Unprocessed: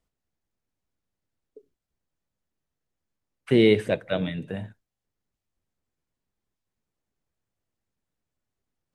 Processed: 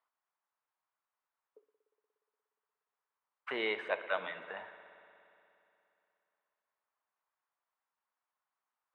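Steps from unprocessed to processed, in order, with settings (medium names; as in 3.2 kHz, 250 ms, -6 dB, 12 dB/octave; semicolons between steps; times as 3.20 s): in parallel at -2 dB: compression, threshold -29 dBFS, peak gain reduction 14.5 dB; on the sum: ladder band-pass 1.2 kHz, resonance 50%; spring tank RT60 2.9 s, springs 59 ms, chirp 25 ms, DRR 11 dB; trim +7 dB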